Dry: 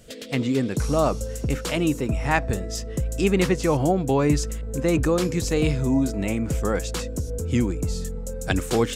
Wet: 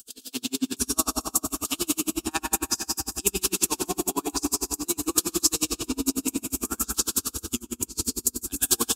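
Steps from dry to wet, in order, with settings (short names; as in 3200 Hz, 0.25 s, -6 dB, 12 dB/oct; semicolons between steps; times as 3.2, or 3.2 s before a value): bell 660 Hz -11 dB 1.3 oct; fixed phaser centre 540 Hz, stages 6; reverb RT60 3.7 s, pre-delay 88 ms, DRR -1 dB; 7.59–8.18 negative-ratio compressor -26 dBFS, ratio -0.5; RIAA curve recording; dB-linear tremolo 11 Hz, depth 36 dB; gain +6 dB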